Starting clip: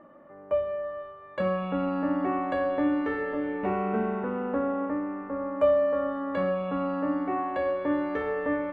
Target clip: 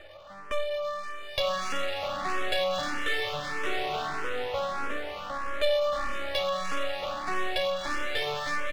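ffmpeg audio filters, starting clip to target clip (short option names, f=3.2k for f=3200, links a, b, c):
-filter_complex "[0:a]highpass=f=430:w=0.5412,highpass=f=430:w=1.3066,aemphasis=mode=production:type=riaa,bandreject=f=940:w=5.6,asplit=2[a][b];[b]acompressor=threshold=-41dB:ratio=6,volume=2dB[c];[a][c]amix=inputs=2:normalize=0,asoftclip=type=tanh:threshold=-21.5dB,lowpass=f=3.6k:t=q:w=8.5,aeval=exprs='max(val(0),0)':c=same,aecho=1:1:920:0.224,asplit=2[d][e];[e]afreqshift=1.6[f];[d][f]amix=inputs=2:normalize=1,volume=6.5dB"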